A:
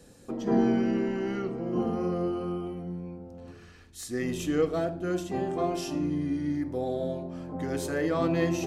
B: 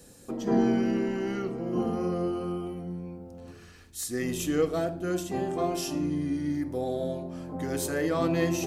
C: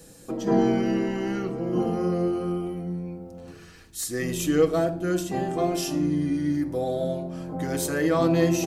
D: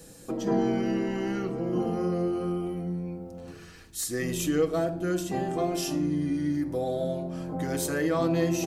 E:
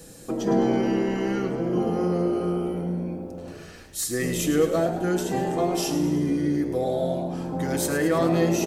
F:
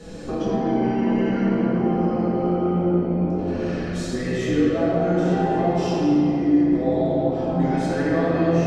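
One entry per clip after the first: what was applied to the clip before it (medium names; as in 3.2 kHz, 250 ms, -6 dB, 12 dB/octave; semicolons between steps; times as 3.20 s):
treble shelf 7.2 kHz +11.5 dB
comb 6.2 ms, depth 38%; trim +3 dB
compression 1.5:1, threshold -29 dBFS, peak gain reduction 5.5 dB
frequency-shifting echo 107 ms, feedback 58%, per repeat +63 Hz, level -11 dB; trim +3.5 dB
compression 4:1, threshold -34 dBFS, peak gain reduction 15 dB; distance through air 140 m; simulated room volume 200 m³, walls hard, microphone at 1.4 m; trim +3.5 dB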